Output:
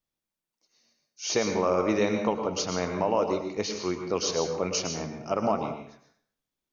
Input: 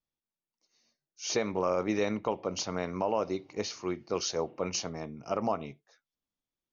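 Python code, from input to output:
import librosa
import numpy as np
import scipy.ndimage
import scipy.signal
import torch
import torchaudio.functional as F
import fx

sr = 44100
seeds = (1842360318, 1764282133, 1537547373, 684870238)

y = fx.rev_plate(x, sr, seeds[0], rt60_s=0.63, hf_ratio=0.85, predelay_ms=95, drr_db=5.0)
y = y * librosa.db_to_amplitude(3.5)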